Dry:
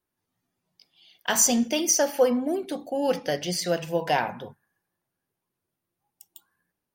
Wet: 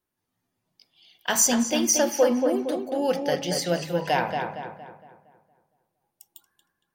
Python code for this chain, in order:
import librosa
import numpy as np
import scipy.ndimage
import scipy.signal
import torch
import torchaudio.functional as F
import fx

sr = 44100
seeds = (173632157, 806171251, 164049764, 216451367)

y = fx.echo_filtered(x, sr, ms=231, feedback_pct=44, hz=2900.0, wet_db=-5)